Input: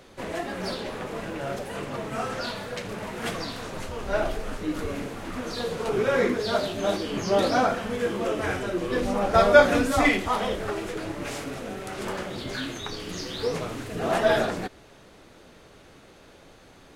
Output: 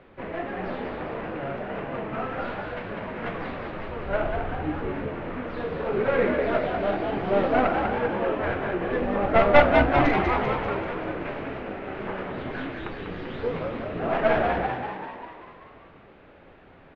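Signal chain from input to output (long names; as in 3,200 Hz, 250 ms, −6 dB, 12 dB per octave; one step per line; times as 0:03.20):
stylus tracing distortion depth 0.47 ms
low-pass filter 2,600 Hz 24 dB per octave
on a send: echo with shifted repeats 195 ms, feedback 59%, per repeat +63 Hz, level −5 dB
on the sum: level −1 dB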